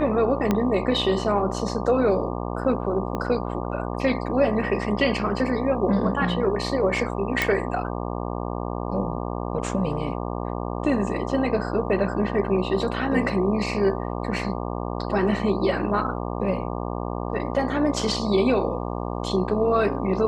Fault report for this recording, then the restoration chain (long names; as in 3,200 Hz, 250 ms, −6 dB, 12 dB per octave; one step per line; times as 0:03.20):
mains buzz 60 Hz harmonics 20 −29 dBFS
0:00.51: click −9 dBFS
0:03.15: click −16 dBFS
0:07.42: click −7 dBFS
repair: click removal
hum removal 60 Hz, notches 20